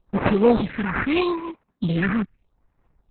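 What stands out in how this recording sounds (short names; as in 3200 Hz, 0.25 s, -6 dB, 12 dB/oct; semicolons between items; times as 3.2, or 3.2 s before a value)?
aliases and images of a low sample rate 3500 Hz, jitter 20%; phasing stages 4, 0.81 Hz, lowest notch 600–4800 Hz; Opus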